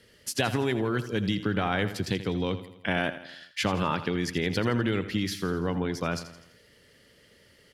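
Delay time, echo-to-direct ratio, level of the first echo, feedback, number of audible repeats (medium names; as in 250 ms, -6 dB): 83 ms, -11.5 dB, -13.0 dB, 52%, 4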